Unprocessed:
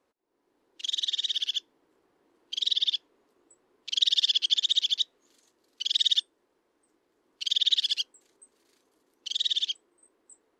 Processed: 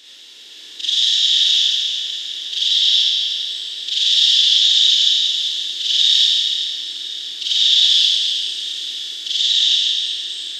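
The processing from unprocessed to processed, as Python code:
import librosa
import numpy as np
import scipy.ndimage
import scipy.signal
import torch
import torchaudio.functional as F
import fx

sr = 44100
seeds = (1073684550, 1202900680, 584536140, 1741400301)

y = fx.bin_compress(x, sr, power=0.4)
y = fx.highpass(y, sr, hz=320.0, slope=6, at=(1.32, 3.98))
y = y + 10.0 ** (-16.0 / 20.0) * np.pad(y, (int(1055 * sr / 1000.0), 0))[:len(y)]
y = fx.rev_schroeder(y, sr, rt60_s=2.7, comb_ms=27, drr_db=-9.0)
y = y * librosa.db_to_amplitude(-1.0)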